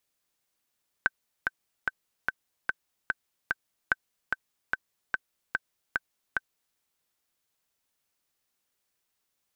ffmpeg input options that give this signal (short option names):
-f lavfi -i "aevalsrc='pow(10,(-9-4*gte(mod(t,7*60/147),60/147))/20)*sin(2*PI*1540*mod(t,60/147))*exp(-6.91*mod(t,60/147)/0.03)':d=5.71:s=44100"